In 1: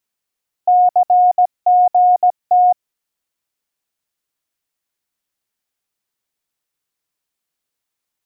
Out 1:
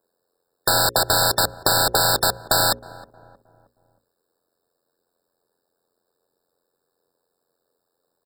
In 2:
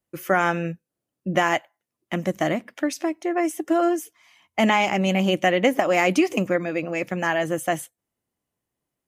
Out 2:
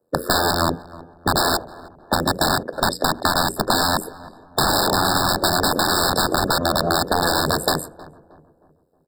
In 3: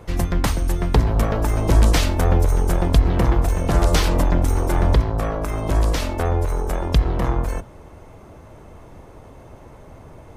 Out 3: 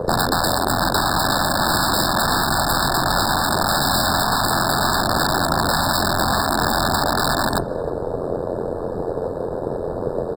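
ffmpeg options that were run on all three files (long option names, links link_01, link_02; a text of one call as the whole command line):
ffmpeg -i in.wav -filter_complex "[0:a]tremolo=f=87:d=0.947,acrossover=split=110|1100[link_01][link_02][link_03];[link_02]acontrast=59[link_04];[link_01][link_04][link_03]amix=inputs=3:normalize=0,aeval=exprs='(mod(8.91*val(0)+1,2)-1)/8.91':channel_layout=same,equalizer=frequency=470:width_type=o:width=0.88:gain=13.5,afftfilt=real='re*lt(hypot(re,im),0.316)':imag='im*lt(hypot(re,im),0.316)':win_size=1024:overlap=0.75,asplit=2[link_05][link_06];[link_06]adelay=314,lowpass=frequency=1100:poles=1,volume=-19.5dB,asplit=2[link_07][link_08];[link_08]adelay=314,lowpass=frequency=1100:poles=1,volume=0.48,asplit=2[link_09][link_10];[link_10]adelay=314,lowpass=frequency=1100:poles=1,volume=0.48,asplit=2[link_11][link_12];[link_12]adelay=314,lowpass=frequency=1100:poles=1,volume=0.48[link_13];[link_05][link_07][link_09][link_11][link_13]amix=inputs=5:normalize=0,adynamicequalizer=threshold=0.0126:dfrequency=4700:dqfactor=0.93:tfrequency=4700:tqfactor=0.93:attack=5:release=100:ratio=0.375:range=1.5:mode=boostabove:tftype=bell,asplit=2[link_14][link_15];[link_15]aeval=exprs='sgn(val(0))*max(abs(val(0))-0.00631,0)':channel_layout=same,volume=-4dB[link_16];[link_14][link_16]amix=inputs=2:normalize=0,acompressor=threshold=-22dB:ratio=6,bandreject=frequency=60:width_type=h:width=6,bandreject=frequency=120:width_type=h:width=6,bandreject=frequency=180:width_type=h:width=6,bandreject=frequency=240:width_type=h:width=6,bandreject=frequency=300:width_type=h:width=6,bandreject=frequency=360:width_type=h:width=6,bandreject=frequency=420:width_type=h:width=6,bandreject=frequency=480:width_type=h:width=6,bandreject=frequency=540:width_type=h:width=6,afftfilt=real='re*eq(mod(floor(b*sr/1024/1800),2),0)':imag='im*eq(mod(floor(b*sr/1024/1800),2),0)':win_size=1024:overlap=0.75,volume=8.5dB" out.wav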